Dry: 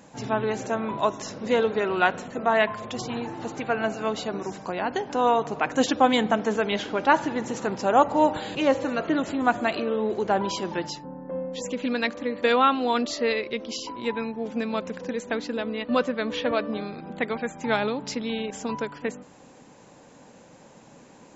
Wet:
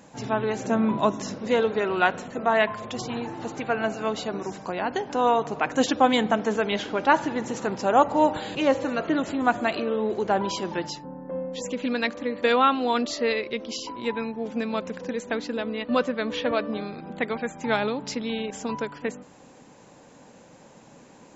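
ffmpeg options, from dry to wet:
ffmpeg -i in.wav -filter_complex "[0:a]asettb=1/sr,asplit=3[link_01][link_02][link_03];[link_01]atrim=end=0.654[link_04];[link_02]atrim=start=0.65:end=1.35,asetpts=PTS-STARTPTS,afade=type=in:duration=0.004:curve=qsin,afade=type=out:start_time=0.696:duration=0.004:curve=qsin,equalizer=frequency=210:width_type=o:width=1.1:gain=9.5[link_05];[link_03]atrim=start=1.346[link_06];[link_04][link_05]acrossfade=duration=0.004:curve1=hsin:curve2=qsin[link_07];[link_07][link_06]acrossfade=duration=0.004:curve1=qsin:curve2=hsin" out.wav

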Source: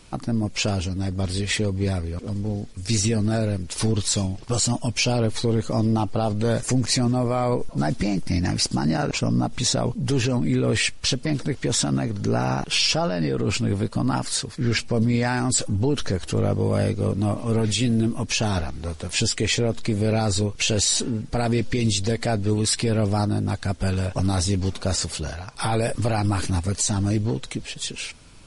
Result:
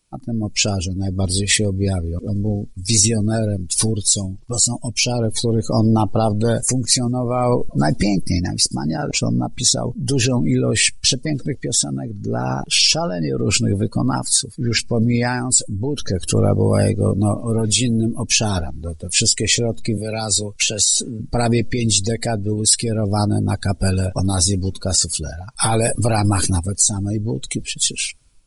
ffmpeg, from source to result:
ffmpeg -i in.wav -filter_complex "[0:a]asettb=1/sr,asplit=3[link_01][link_02][link_03];[link_01]atrim=end=19.974[link_04];[link_02]atrim=start=19.97:end=21.2,asetpts=PTS-STARTPTS,afade=type=in:duration=0.004:curve=qsin,afade=type=out:start_time=1.226:duration=0.004:curve=qsin,acrossover=split=90|180|560|2000[link_05][link_06][link_07][link_08][link_09];[link_05]acompressor=threshold=-45dB:ratio=3[link_10];[link_06]acompressor=threshold=-38dB:ratio=3[link_11];[link_07]acompressor=threshold=-37dB:ratio=3[link_12];[link_08]acompressor=threshold=-30dB:ratio=3[link_13];[link_09]acompressor=threshold=-26dB:ratio=3[link_14];[link_10][link_11][link_12][link_13][link_14]amix=inputs=5:normalize=0[link_15];[link_03]atrim=start=21.196[link_16];[link_04][link_15]acrossfade=duration=0.004:curve1=hsin:curve2=qsin[link_17];[link_17][link_16]acrossfade=duration=0.004:curve1=qsin:curve2=hsin,aemphasis=mode=production:type=50fm,dynaudnorm=framelen=250:gausssize=3:maxgain=8dB,afftdn=noise_reduction=21:noise_floor=-26,volume=-1dB" out.wav

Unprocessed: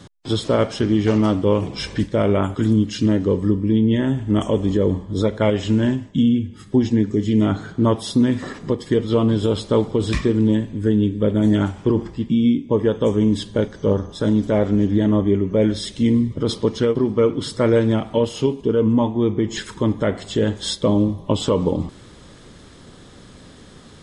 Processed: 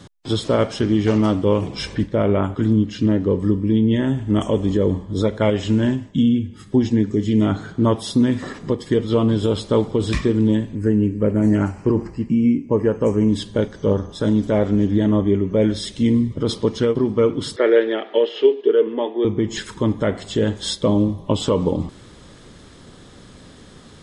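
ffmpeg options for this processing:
ffmpeg -i in.wav -filter_complex "[0:a]asettb=1/sr,asplit=3[link_01][link_02][link_03];[link_01]atrim=end=1.954[link_04];[link_02]atrim=start=1.95:end=3.4,asetpts=PTS-STARTPTS,afade=type=in:duration=0.004:curve=qsin,afade=type=out:start_time=1.446:duration=0.004:curve=qsin,lowpass=frequency=2500:poles=1[link_05];[link_03]atrim=start=3.396[link_06];[link_04][link_05]acrossfade=duration=0.004:curve1=hsin:curve2=qsin[link_07];[link_07][link_06]acrossfade=duration=0.004:curve1=qsin:curve2=hsin,asettb=1/sr,asplit=3[link_08][link_09][link_10];[link_08]atrim=end=10.754[link_11];[link_09]atrim=start=10.75:end=13.29,asetpts=PTS-STARTPTS,afade=type=in:duration=0.004:curve=qsin,afade=type=out:start_time=2.536:duration=0.004:curve=qsin,asuperstop=centerf=3500:order=4:qfactor=2.4[link_12];[link_10]atrim=start=13.286[link_13];[link_11][link_12]acrossfade=duration=0.004:curve1=hsin:curve2=qsin[link_14];[link_14][link_13]acrossfade=duration=0.004:curve1=qsin:curve2=hsin,asettb=1/sr,asplit=3[link_15][link_16][link_17];[link_15]atrim=end=17.564[link_18];[link_16]atrim=start=17.56:end=19.25,asetpts=PTS-STARTPTS,afade=type=in:duration=0.004:curve=qsin,afade=type=out:start_time=1.686:duration=0.004:curve=qsin,highpass=frequency=350:width=0.5412,highpass=frequency=350:width=1.3066,equalizer=frequency=400:width_type=q:width=4:gain=9,equalizer=frequency=1000:width_type=q:width=4:gain=-7,equalizer=frequency=1800:width_type=q:width=4:gain=9,equalizer=frequency=3200:width_type=q:width=4:gain=4,lowpass=frequency=4000:width=0.5412,lowpass=frequency=4000:width=1.3066[link_19];[link_17]atrim=start=19.246[link_20];[link_18][link_19]acrossfade=duration=0.004:curve1=hsin:curve2=qsin[link_21];[link_21][link_20]acrossfade=duration=0.004:curve1=qsin:curve2=hsin" out.wav

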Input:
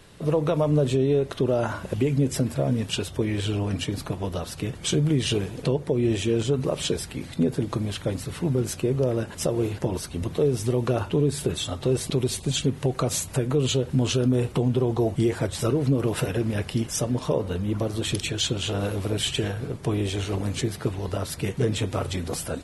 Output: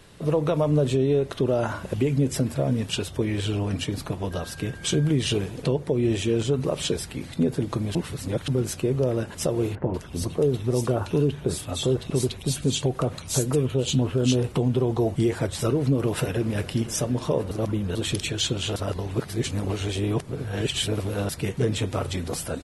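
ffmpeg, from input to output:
ffmpeg -i in.wav -filter_complex "[0:a]asettb=1/sr,asplit=3[link_01][link_02][link_03];[link_01]atrim=end=4.314[link_04];[link_02]atrim=start=4.31:end=5.11,asetpts=PTS-STARTPTS,afade=type=in:duration=0.004:curve=qsin,afade=type=out:start_time=0.796:duration=0.004:curve=qsin,aeval=exprs='val(0)+0.00631*sin(2*PI*1600*n/s)':channel_layout=same[link_05];[link_03]atrim=start=5.106[link_06];[link_04][link_05]acrossfade=duration=0.004:curve1=hsin:curve2=qsin[link_07];[link_07][link_06]acrossfade=duration=0.004:curve1=qsin:curve2=hsin,asettb=1/sr,asplit=3[link_08][link_09][link_10];[link_08]atrim=end=9.754[link_11];[link_09]atrim=start=9.75:end=14.44,asetpts=PTS-STARTPTS,afade=type=in:duration=0.004:curve=qsin,afade=type=out:start_time=4.686:duration=0.004:curve=qsin,acrossover=split=2000[link_12][link_13];[link_13]adelay=190[link_14];[link_12][link_14]amix=inputs=2:normalize=0,atrim=end_sample=206829[link_15];[link_10]atrim=start=14.436[link_16];[link_11][link_15]acrossfade=duration=0.004:curve1=hsin:curve2=qsin[link_17];[link_17][link_16]acrossfade=duration=0.004:curve1=qsin:curve2=hsin,asplit=2[link_18][link_19];[link_19]afade=type=in:start_time=15.94:duration=0.01,afade=type=out:start_time=16.64:duration=0.01,aecho=0:1:410|820|1230|1640|2050|2460|2870:0.177828|0.115588|0.0751323|0.048836|0.0317434|0.0206332|0.0134116[link_20];[link_18][link_20]amix=inputs=2:normalize=0,asplit=7[link_21][link_22][link_23][link_24][link_25][link_26][link_27];[link_21]atrim=end=7.952[link_28];[link_22]atrim=start=7.948:end=8.482,asetpts=PTS-STARTPTS,areverse[link_29];[link_23]atrim=start=8.478:end=17.512[link_30];[link_24]atrim=start=17.508:end=17.952,asetpts=PTS-STARTPTS,areverse[link_31];[link_25]atrim=start=17.948:end=18.762[link_32];[link_26]atrim=start=18.758:end=21.292,asetpts=PTS-STARTPTS,areverse[link_33];[link_27]atrim=start=21.288[link_34];[link_28][link_29]acrossfade=duration=0.004:curve1=hsin:curve2=hsin[link_35];[link_35][link_30]acrossfade=duration=0.004:curve1=hsin:curve2=hsin[link_36];[link_36][link_31]acrossfade=duration=0.004:curve1=hsin:curve2=hsin[link_37];[link_37][link_32]acrossfade=duration=0.004:curve1=hsin:curve2=hsin[link_38];[link_38][link_33]acrossfade=duration=0.004:curve1=hsin:curve2=hsin[link_39];[link_39][link_34]acrossfade=duration=0.004:curve1=hsin:curve2=hsin" out.wav

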